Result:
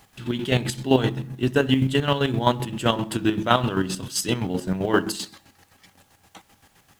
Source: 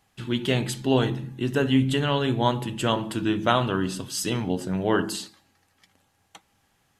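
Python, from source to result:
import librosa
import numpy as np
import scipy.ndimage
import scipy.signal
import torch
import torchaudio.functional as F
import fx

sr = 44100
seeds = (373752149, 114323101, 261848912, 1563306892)

y = fx.law_mismatch(x, sr, coded='mu')
y = fx.chopper(y, sr, hz=7.7, depth_pct=60, duty_pct=40)
y = fx.quant_dither(y, sr, seeds[0], bits=12, dither='triangular')
y = F.gain(torch.from_numpy(y), 4.0).numpy()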